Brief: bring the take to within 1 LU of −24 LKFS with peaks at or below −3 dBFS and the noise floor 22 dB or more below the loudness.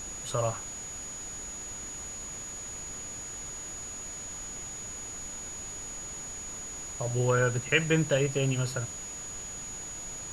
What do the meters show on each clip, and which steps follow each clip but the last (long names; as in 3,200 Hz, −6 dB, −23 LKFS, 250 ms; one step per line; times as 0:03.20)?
interfering tone 6,800 Hz; level of the tone −38 dBFS; background noise floor −40 dBFS; target noise floor −55 dBFS; integrated loudness −32.5 LKFS; sample peak −10.0 dBFS; target loudness −24.0 LKFS
→ notch filter 6,800 Hz, Q 30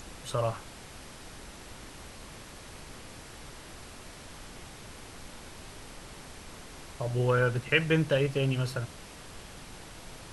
interfering tone none found; background noise floor −48 dBFS; target noise floor −51 dBFS
→ noise reduction from a noise print 6 dB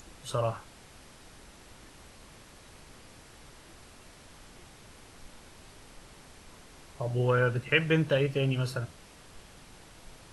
background noise floor −54 dBFS; integrated loudness −29.0 LKFS; sample peak −9.5 dBFS; target loudness −24.0 LKFS
→ level +5 dB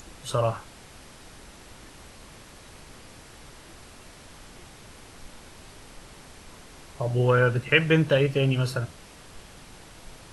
integrated loudness −24.0 LKFS; sample peak −4.5 dBFS; background noise floor −49 dBFS